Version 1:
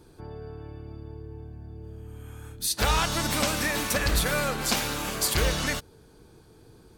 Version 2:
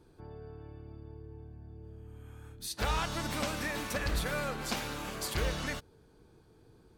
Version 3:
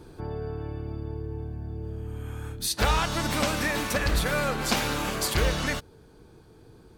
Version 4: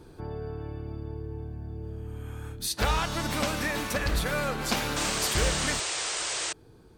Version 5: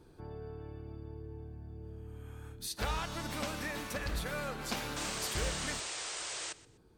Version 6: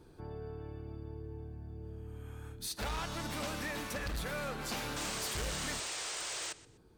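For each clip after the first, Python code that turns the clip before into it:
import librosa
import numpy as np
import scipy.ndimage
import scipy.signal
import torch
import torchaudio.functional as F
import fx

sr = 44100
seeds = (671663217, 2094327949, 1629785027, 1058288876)

y1 = fx.high_shelf(x, sr, hz=4600.0, db=-7.5)
y1 = y1 * 10.0 ** (-7.0 / 20.0)
y2 = fx.rider(y1, sr, range_db=5, speed_s=0.5)
y2 = y2 * 10.0 ** (8.5 / 20.0)
y3 = fx.spec_paint(y2, sr, seeds[0], shape='noise', start_s=4.96, length_s=1.57, low_hz=310.0, high_hz=9100.0, level_db=-29.0)
y3 = y3 * 10.0 ** (-2.5 / 20.0)
y4 = fx.echo_feedback(y3, sr, ms=125, feedback_pct=28, wet_db=-19)
y4 = y4 * 10.0 ** (-9.0 / 20.0)
y5 = np.clip(y4, -10.0 ** (-34.5 / 20.0), 10.0 ** (-34.5 / 20.0))
y5 = y5 * 10.0 ** (1.0 / 20.0)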